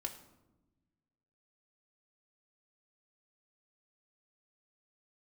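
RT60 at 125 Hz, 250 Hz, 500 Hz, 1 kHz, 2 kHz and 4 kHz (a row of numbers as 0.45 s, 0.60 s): 1.9 s, 1.7 s, 1.1 s, 0.90 s, 0.70 s, 0.55 s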